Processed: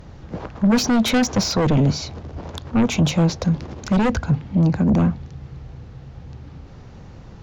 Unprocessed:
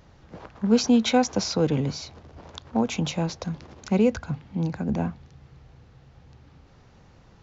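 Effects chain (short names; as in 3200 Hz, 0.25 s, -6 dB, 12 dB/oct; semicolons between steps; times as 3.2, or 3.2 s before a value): in parallel at -9 dB: sine folder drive 14 dB, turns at -8.5 dBFS; on the sum: low shelf 500 Hz +7 dB; gain -4.5 dB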